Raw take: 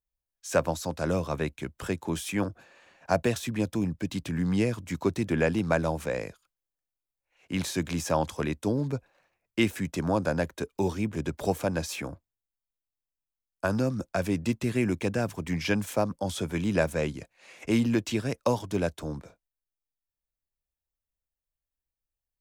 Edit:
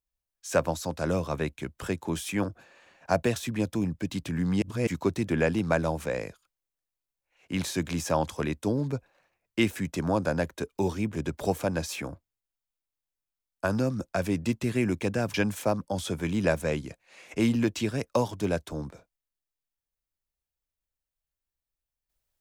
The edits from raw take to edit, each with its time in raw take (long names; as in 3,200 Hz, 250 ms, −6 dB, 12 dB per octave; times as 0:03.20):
0:04.62–0:04.87: reverse
0:15.34–0:15.65: remove